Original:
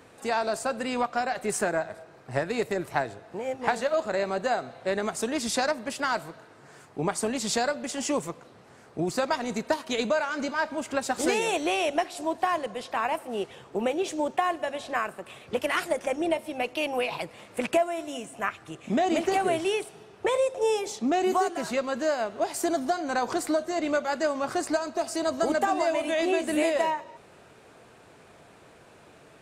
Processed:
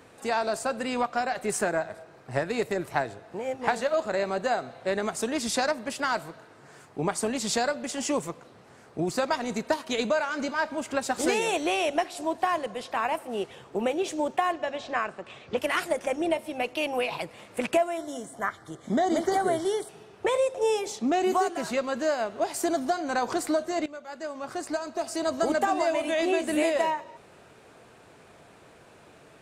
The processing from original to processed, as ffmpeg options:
ffmpeg -i in.wav -filter_complex "[0:a]asettb=1/sr,asplit=3[link_01][link_02][link_03];[link_01]atrim=end=14.524[link_04];[link_02]atrim=start=14.52:end=15.58,asetpts=PTS-STARTPTS,afade=type=in:duration=0.004:curve=qsin,afade=type=out:start_time=1.056:duration=0.004:curve=qsin,lowpass=frequency=6700:width=0.5412,lowpass=frequency=6700:width=1.3066[link_05];[link_03]atrim=start=15.576[link_06];[link_04][link_05]acrossfade=duration=0.004:curve1=hsin:curve2=qsin[link_07];[link_07][link_06]acrossfade=duration=0.004:curve1=qsin:curve2=hsin,asettb=1/sr,asplit=3[link_08][link_09][link_10];[link_08]atrim=end=17.974[link_11];[link_09]atrim=start=17.97:end=19.89,asetpts=PTS-STARTPTS,afade=type=in:duration=0.004:curve=qsin,afade=type=out:start_time=1.916:duration=0.004:curve=qsin,asuperstop=centerf=2600:order=4:qfactor=2.3[link_12];[link_10]atrim=start=19.886[link_13];[link_11][link_12]acrossfade=duration=0.004:curve1=hsin:curve2=qsin[link_14];[link_14][link_13]acrossfade=duration=0.004:curve1=qsin:curve2=hsin,asplit=2[link_15][link_16];[link_15]atrim=end=23.86,asetpts=PTS-STARTPTS,afade=type=out:start_time=23.856:duration=0.004:curve=hsin:silence=0.112202[link_17];[link_16]atrim=start=23.86,asetpts=PTS-STARTPTS,afade=type=in:duration=1.49:silence=0.112202[link_18];[link_17][link_18]concat=n=2:v=0:a=1" out.wav

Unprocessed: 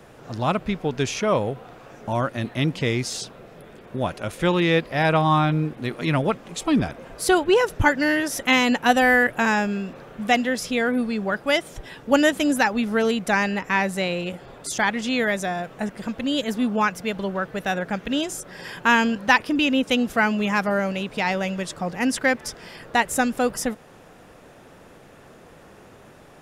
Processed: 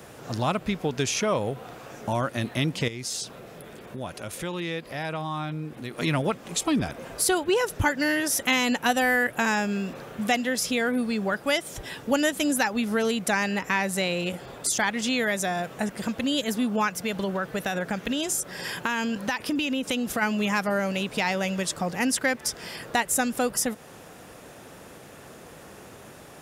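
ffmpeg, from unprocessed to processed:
ffmpeg -i in.wav -filter_complex "[0:a]asettb=1/sr,asplit=3[link_01][link_02][link_03];[link_01]atrim=end=2.884[link_04];[link_02]atrim=start=2.88:end=5.98,asetpts=PTS-STARTPTS,afade=type=in:duration=0.004:curve=qsin,afade=type=out:start_time=3.096:duration=0.004:curve=qsin,acompressor=threshold=-41dB:ratio=2:attack=3.2:release=140:knee=1:detection=peak[link_05];[link_03]atrim=start=5.976[link_06];[link_04][link_05]acrossfade=duration=0.004:curve1=hsin:curve2=qsin[link_07];[link_07][link_06]acrossfade=duration=0.004:curve1=qsin:curve2=hsin,asplit=3[link_08][link_09][link_10];[link_08]afade=type=out:start_time=16.99:duration=0.02[link_11];[link_09]acompressor=threshold=-22dB:ratio=6:attack=3.2:release=140:knee=1:detection=peak,afade=type=in:start_time=16.99:duration=0.02,afade=type=out:start_time=20.21:duration=0.02[link_12];[link_10]afade=type=in:start_time=20.21:duration=0.02[link_13];[link_11][link_12][link_13]amix=inputs=3:normalize=0,highpass=47,highshelf=frequency=5100:gain=10,acompressor=threshold=-27dB:ratio=2,volume=1.5dB" out.wav

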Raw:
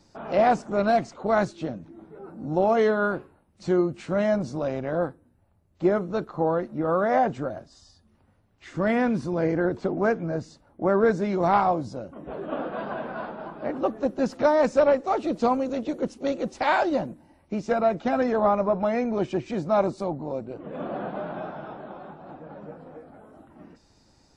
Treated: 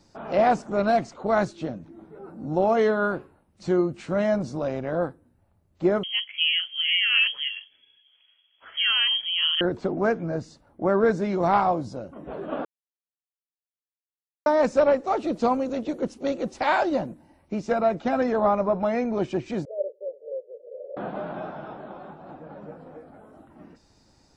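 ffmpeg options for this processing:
ffmpeg -i in.wav -filter_complex "[0:a]asettb=1/sr,asplit=3[link_01][link_02][link_03];[link_01]atrim=end=6.034[link_04];[link_02]atrim=start=6.03:end=9.61,asetpts=PTS-STARTPTS,afade=type=in:duration=0.004:curve=qsin,afade=type=out:start_time=3.576:duration=0.004:curve=qsin,lowpass=frequency=2900:width_type=q:width=0.5098,lowpass=frequency=2900:width_type=q:width=0.6013,lowpass=frequency=2900:width_type=q:width=0.9,lowpass=frequency=2900:width_type=q:width=2.563,afreqshift=-3400[link_05];[link_03]atrim=start=9.606[link_06];[link_04][link_05]acrossfade=duration=0.004:curve1=hsin:curve2=qsin[link_07];[link_07][link_06]acrossfade=duration=0.004:curve1=qsin:curve2=hsin,asettb=1/sr,asplit=3[link_08][link_09][link_10];[link_08]atrim=end=19.654[link_11];[link_09]atrim=start=19.65:end=20.97,asetpts=PTS-STARTPTS,afade=type=in:duration=0.004:curve=qsin,afade=type=out:start_time=1.316:duration=0.004:curve=qsin,asuperpass=centerf=500:order=8:qfactor=3[link_12];[link_10]atrim=start=20.966[link_13];[link_11][link_12]acrossfade=duration=0.004:curve1=hsin:curve2=qsin[link_14];[link_14][link_13]acrossfade=duration=0.004:curve1=qsin:curve2=hsin,asplit=3[link_15][link_16][link_17];[link_15]atrim=end=12.65,asetpts=PTS-STARTPTS,afade=type=out:start_time=12.646:duration=0.004:curve=hsin[link_18];[link_16]atrim=start=12.65:end=14.46,asetpts=PTS-STARTPTS,volume=0[link_19];[link_17]atrim=start=14.46,asetpts=PTS-STARTPTS,afade=type=in:duration=0.004:curve=hsin[link_20];[link_18][link_19][link_20]concat=n=3:v=0:a=1" out.wav

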